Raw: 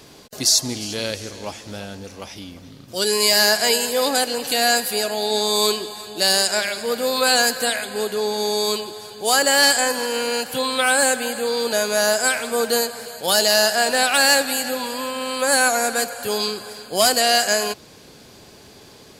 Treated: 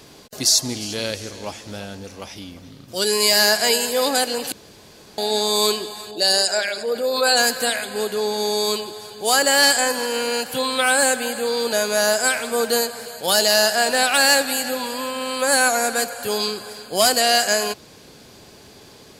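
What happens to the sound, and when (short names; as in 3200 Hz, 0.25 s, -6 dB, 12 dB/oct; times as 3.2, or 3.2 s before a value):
4.52–5.18 room tone
6.11–7.37 formant sharpening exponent 1.5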